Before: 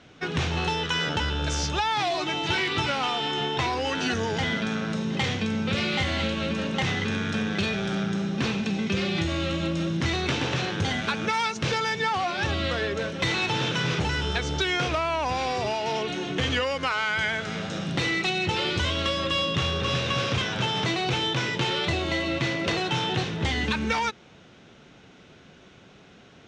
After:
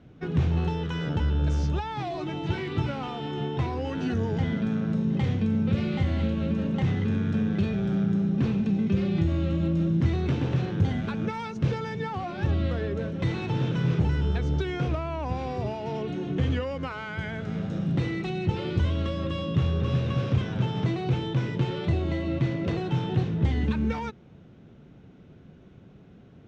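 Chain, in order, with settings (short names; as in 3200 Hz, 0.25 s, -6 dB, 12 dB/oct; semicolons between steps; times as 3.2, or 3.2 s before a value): EQ curve 140 Hz 0 dB, 350 Hz -6 dB, 810 Hz -13 dB, 5700 Hz -23 dB; gain +5.5 dB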